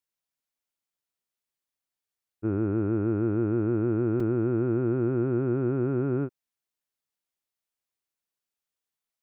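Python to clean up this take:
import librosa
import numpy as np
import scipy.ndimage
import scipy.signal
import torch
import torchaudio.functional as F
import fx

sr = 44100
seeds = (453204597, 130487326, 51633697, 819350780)

y = fx.fix_interpolate(x, sr, at_s=(4.2,), length_ms=3.7)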